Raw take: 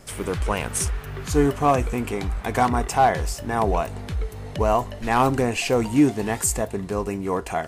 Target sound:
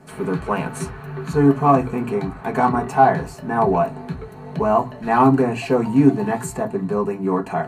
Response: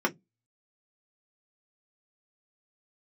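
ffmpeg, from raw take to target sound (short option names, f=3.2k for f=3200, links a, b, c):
-filter_complex "[1:a]atrim=start_sample=2205,asetrate=33075,aresample=44100[a];[0:a][a]afir=irnorm=-1:irlink=0,volume=-11dB"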